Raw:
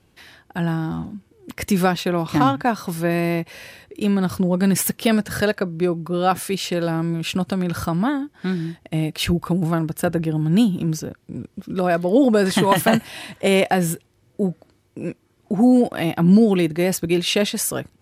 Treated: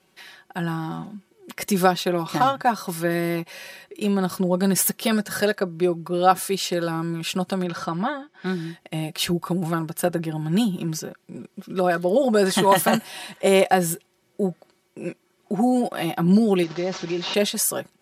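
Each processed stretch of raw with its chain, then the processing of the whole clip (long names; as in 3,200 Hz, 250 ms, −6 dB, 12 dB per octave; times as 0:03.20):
0:07.65–0:08.46: low-pass filter 5,200 Hz + low-shelf EQ 92 Hz −9.5 dB
0:16.63–0:17.34: linear delta modulator 32 kbit/s, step −29.5 dBFS + downward compressor 4 to 1, threshold −21 dBFS
whole clip: high-pass filter 440 Hz 6 dB per octave; comb filter 5.3 ms; dynamic equaliser 2,300 Hz, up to −5 dB, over −39 dBFS, Q 1.4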